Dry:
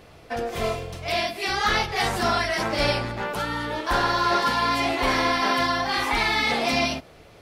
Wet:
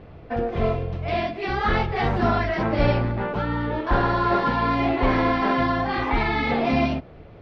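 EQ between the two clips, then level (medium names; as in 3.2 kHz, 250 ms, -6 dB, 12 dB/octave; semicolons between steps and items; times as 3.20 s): low-pass 3.7 kHz 6 dB/octave; distance through air 250 m; bass shelf 420 Hz +9 dB; 0.0 dB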